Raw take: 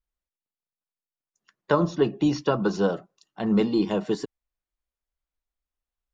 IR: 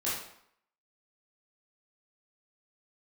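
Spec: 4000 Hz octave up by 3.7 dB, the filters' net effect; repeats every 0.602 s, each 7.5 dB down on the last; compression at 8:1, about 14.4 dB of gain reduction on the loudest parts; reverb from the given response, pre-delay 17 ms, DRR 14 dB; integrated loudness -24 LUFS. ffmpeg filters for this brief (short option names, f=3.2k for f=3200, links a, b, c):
-filter_complex "[0:a]equalizer=f=4k:t=o:g=5,acompressor=threshold=-32dB:ratio=8,aecho=1:1:602|1204|1806|2408|3010:0.422|0.177|0.0744|0.0312|0.0131,asplit=2[a][b];[1:a]atrim=start_sample=2205,adelay=17[c];[b][c]afir=irnorm=-1:irlink=0,volume=-20.5dB[d];[a][d]amix=inputs=2:normalize=0,volume=13.5dB"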